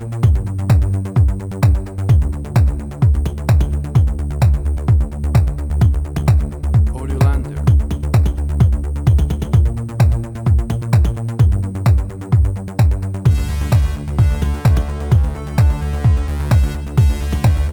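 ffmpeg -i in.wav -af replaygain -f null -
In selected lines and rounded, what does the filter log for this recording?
track_gain = -0.0 dB
track_peak = 0.489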